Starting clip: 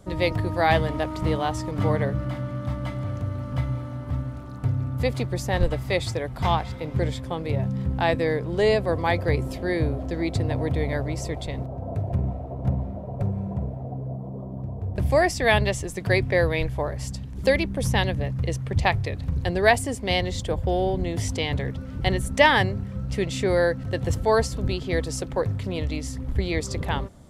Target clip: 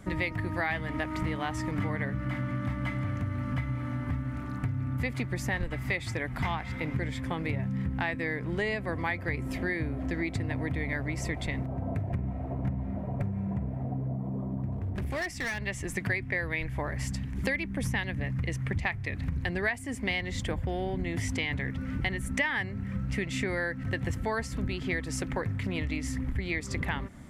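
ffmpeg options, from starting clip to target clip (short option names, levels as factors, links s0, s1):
-filter_complex "[0:a]equalizer=f=250:t=o:w=1:g=6,equalizer=f=500:t=o:w=1:g=-6,equalizer=f=2000:t=o:w=1:g=12,equalizer=f=4000:t=o:w=1:g=-4,acompressor=threshold=0.0398:ratio=6,asettb=1/sr,asplit=3[s0][s1][s2];[s0]atrim=end=14.724[s3];[s1]atrim=start=14.72:end=15.66,asetpts=PTS-STARTPTS,afade=t=in:d=0.004:c=qsin,afade=t=out:st=0.936:d=0.004:c=qsin,volume=28.2,asoftclip=hard,volume=0.0355[s4];[s2]atrim=start=15.656[s5];[s3][s4]acrossfade=d=0.004:c1=hsin:c2=qsin[s6];[s6][s5]acrossfade=d=0.004:c1=qsin:c2=hsin"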